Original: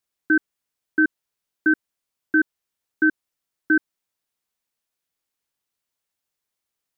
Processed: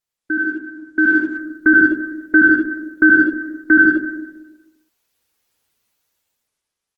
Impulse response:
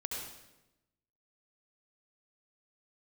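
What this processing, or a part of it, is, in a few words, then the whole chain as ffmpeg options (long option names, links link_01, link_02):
speakerphone in a meeting room: -filter_complex "[1:a]atrim=start_sample=2205[link_01];[0:a][link_01]afir=irnorm=-1:irlink=0,asplit=2[link_02][link_03];[link_03]adelay=80,highpass=300,lowpass=3400,asoftclip=type=hard:threshold=-22dB,volume=-30dB[link_04];[link_02][link_04]amix=inputs=2:normalize=0,dynaudnorm=framelen=230:gausssize=9:maxgain=12dB" -ar 48000 -c:a libopus -b:a 16k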